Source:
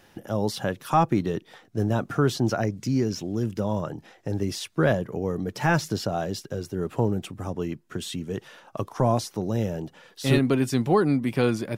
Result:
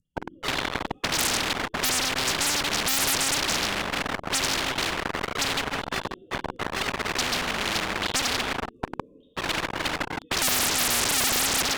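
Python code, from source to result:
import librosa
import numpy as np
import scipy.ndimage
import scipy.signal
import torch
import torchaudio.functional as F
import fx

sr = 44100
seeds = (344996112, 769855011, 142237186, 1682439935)

p1 = fx.sine_speech(x, sr)
p2 = fx.rotary_switch(p1, sr, hz=0.85, then_hz=6.7, switch_at_s=4.8)
p3 = scipy.signal.sosfilt(scipy.signal.cheby2(4, 70, [620.0, 2300.0], 'bandstop', fs=sr, output='sos'), p2)
p4 = p3 + fx.echo_feedback(p3, sr, ms=162, feedback_pct=16, wet_db=-19, dry=0)
p5 = fx.rev_gated(p4, sr, seeds[0], gate_ms=460, shape='falling', drr_db=-3.0)
p6 = fx.fuzz(p5, sr, gain_db=55.0, gate_db=-60.0)
p7 = p5 + (p6 * librosa.db_to_amplitude(-8.5))
p8 = fx.spectral_comp(p7, sr, ratio=10.0)
y = p8 * librosa.db_to_amplitude(9.0)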